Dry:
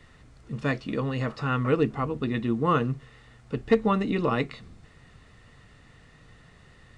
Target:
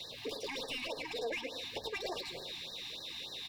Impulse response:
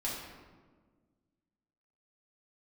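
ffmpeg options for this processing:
-filter_complex "[0:a]equalizer=f=125:t=o:w=1:g=-11,equalizer=f=250:t=o:w=1:g=5,equalizer=f=500:t=o:w=1:g=-9,equalizer=f=2000:t=o:w=1:g=7,equalizer=f=4000:t=o:w=1:g=-9,asplit=2[s0][s1];[1:a]atrim=start_sample=2205[s2];[s1][s2]afir=irnorm=-1:irlink=0,volume=0.0501[s3];[s0][s3]amix=inputs=2:normalize=0,acompressor=threshold=0.0126:ratio=6,tiltshelf=f=970:g=-8,asetrate=88200,aresample=44100,acrossover=split=420|3000[s4][s5][s6];[s5]acompressor=threshold=0.00398:ratio=6[s7];[s4][s7][s6]amix=inputs=3:normalize=0,asplit=2[s8][s9];[s9]highpass=f=720:p=1,volume=22.4,asoftclip=type=tanh:threshold=0.0708[s10];[s8][s10]amix=inputs=2:normalize=0,lowpass=f=1200:p=1,volume=0.501,asuperstop=centerf=1400:order=8:qfactor=4.6,aecho=1:1:108|216|324|432|540|648|756:0.335|0.188|0.105|0.0588|0.0329|0.0184|0.0103,afftfilt=real='re*(1-between(b*sr/1024,460*pow(2700/460,0.5+0.5*sin(2*PI*3.4*pts/sr))/1.41,460*pow(2700/460,0.5+0.5*sin(2*PI*3.4*pts/sr))*1.41))':imag='im*(1-between(b*sr/1024,460*pow(2700/460,0.5+0.5*sin(2*PI*3.4*pts/sr))/1.41,460*pow(2700/460,0.5+0.5*sin(2*PI*3.4*pts/sr))*1.41))':win_size=1024:overlap=0.75,volume=0.891"

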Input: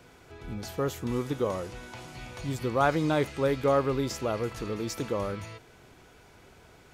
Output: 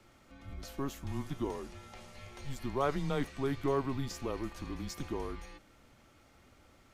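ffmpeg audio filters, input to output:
-af "afreqshift=-140,volume=0.447"

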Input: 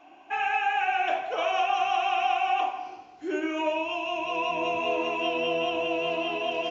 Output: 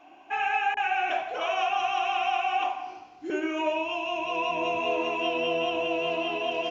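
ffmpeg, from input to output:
-filter_complex "[0:a]asettb=1/sr,asplit=3[s0][s1][s2];[s0]atrim=end=0.744[s3];[s1]atrim=start=0.74:end=3.3,asetpts=PTS-STARTPTS,afade=t=in:d=0.004:c=qsin,afade=t=out:st=2.556:d=0.004:c=qsin,acrossover=split=470[s4][s5];[s5]adelay=30[s6];[s4][s6]amix=inputs=2:normalize=0,atrim=end_sample=112896[s7];[s2]atrim=start=3.296[s8];[s3][s7]acrossfade=d=0.004:c1=hsin:c2=qsin[s9];[s9][s8]acrossfade=d=0.004:c1=qsin:c2=hsin"

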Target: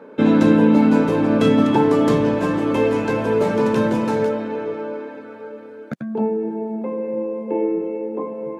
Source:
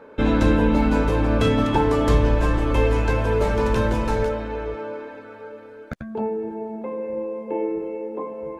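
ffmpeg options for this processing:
-af "highpass=f=170:w=0.5412,highpass=f=170:w=1.3066,lowshelf=f=310:g=11.5"

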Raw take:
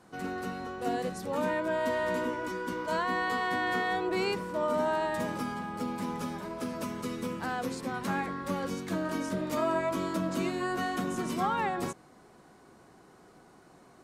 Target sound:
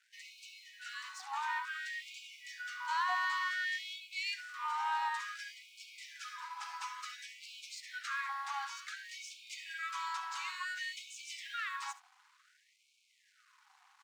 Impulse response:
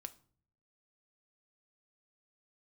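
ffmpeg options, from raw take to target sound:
-af "lowpass=f=7200:w=0.5412,lowpass=f=7200:w=1.3066,equalizer=f=250:w=2.9:g=-12,areverse,acompressor=mode=upward:threshold=0.00224:ratio=2.5,areverse,asoftclip=type=tanh:threshold=0.0631,aecho=1:1:70:0.178,aeval=exprs='sgn(val(0))*max(abs(val(0))-0.00112,0)':c=same,afftfilt=real='re*gte(b*sr/1024,730*pow(2200/730,0.5+0.5*sin(2*PI*0.56*pts/sr)))':imag='im*gte(b*sr/1024,730*pow(2200/730,0.5+0.5*sin(2*PI*0.56*pts/sr)))':win_size=1024:overlap=0.75,volume=1.12"

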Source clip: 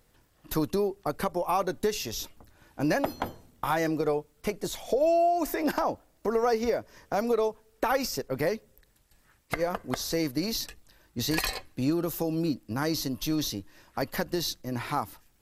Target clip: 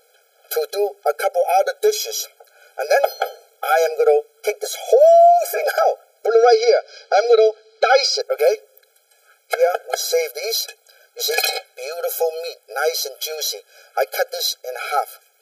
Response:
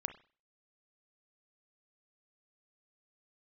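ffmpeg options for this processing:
-filter_complex "[0:a]asettb=1/sr,asplit=3[s0][s1][s2];[s0]atrim=end=6.264[s3];[s1]atrim=start=6.26:end=8.21,asetpts=PTS-STARTPTS,afade=t=in:d=0.004:c=qsin,afade=t=out:st=1.946:d=0.004:c=qsin,lowpass=f=4400:t=q:w=4.1[s4];[s2]atrim=start=8.206[s5];[s3][s4]acrossfade=d=0.004:c1=hsin:c2=qsin[s6];[s6][s5]acrossfade=d=0.004:c1=qsin:c2=hsin,acontrast=89,afftfilt=real='re*eq(mod(floor(b*sr/1024/430),2),1)':imag='im*eq(mod(floor(b*sr/1024/430),2),1)':win_size=1024:overlap=0.75,volume=2.11"

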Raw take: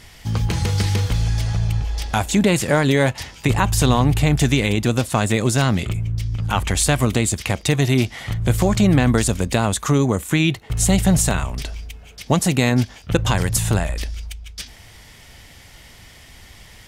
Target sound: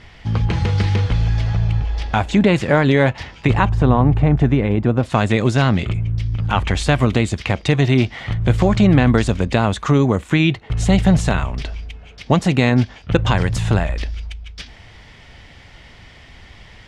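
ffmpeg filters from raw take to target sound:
-af "asetnsamples=n=441:p=0,asendcmd='3.69 lowpass f 1300;5.03 lowpass f 3600',lowpass=3100,volume=1.33"

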